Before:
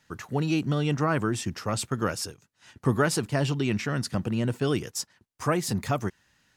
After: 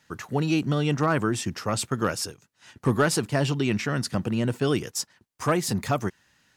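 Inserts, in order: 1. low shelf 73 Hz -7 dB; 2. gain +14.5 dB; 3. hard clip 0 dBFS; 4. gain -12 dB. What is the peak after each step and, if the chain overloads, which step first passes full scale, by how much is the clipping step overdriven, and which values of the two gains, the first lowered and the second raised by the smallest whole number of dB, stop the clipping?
-10.5, +4.0, 0.0, -12.0 dBFS; step 2, 4.0 dB; step 2 +10.5 dB, step 4 -8 dB

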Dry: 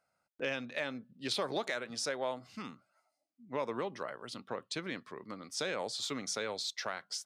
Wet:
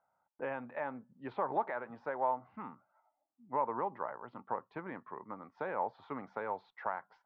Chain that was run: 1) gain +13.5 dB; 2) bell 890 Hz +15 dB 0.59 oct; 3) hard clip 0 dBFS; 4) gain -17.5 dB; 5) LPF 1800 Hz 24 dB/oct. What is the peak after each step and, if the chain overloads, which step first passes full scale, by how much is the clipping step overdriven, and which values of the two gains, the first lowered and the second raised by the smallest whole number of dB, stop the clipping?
-7.5, -2.5, -2.5, -20.0, -20.0 dBFS; no overload

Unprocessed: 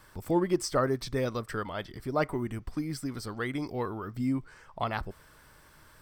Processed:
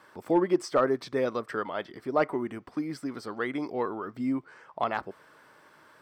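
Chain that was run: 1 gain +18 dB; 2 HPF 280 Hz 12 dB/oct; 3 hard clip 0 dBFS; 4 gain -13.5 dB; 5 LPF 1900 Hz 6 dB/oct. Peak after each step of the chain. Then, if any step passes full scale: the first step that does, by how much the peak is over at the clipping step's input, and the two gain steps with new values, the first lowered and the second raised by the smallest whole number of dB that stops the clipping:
+4.0, +4.5, 0.0, -13.5, -13.5 dBFS; step 1, 4.5 dB; step 1 +13 dB, step 4 -8.5 dB

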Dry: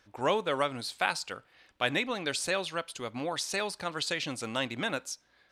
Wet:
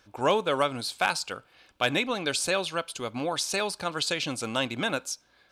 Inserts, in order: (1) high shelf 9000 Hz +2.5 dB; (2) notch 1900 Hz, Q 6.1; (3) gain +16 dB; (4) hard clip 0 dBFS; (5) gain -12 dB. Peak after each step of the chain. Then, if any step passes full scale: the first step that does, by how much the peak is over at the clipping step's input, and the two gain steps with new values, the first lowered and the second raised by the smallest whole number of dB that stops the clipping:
-10.5, -12.0, +4.0, 0.0, -12.0 dBFS; step 3, 4.0 dB; step 3 +12 dB, step 5 -8 dB

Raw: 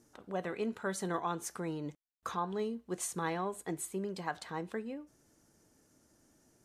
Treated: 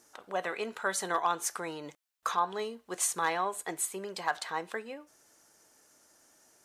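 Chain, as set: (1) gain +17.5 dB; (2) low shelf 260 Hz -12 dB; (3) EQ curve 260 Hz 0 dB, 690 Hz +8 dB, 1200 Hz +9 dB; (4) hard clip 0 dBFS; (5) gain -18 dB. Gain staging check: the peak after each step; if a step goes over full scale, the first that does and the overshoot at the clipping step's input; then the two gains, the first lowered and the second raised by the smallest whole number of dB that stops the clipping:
-2.5, -4.0, +3.5, 0.0, -18.0 dBFS; step 3, 3.5 dB; step 1 +13.5 dB, step 5 -14 dB

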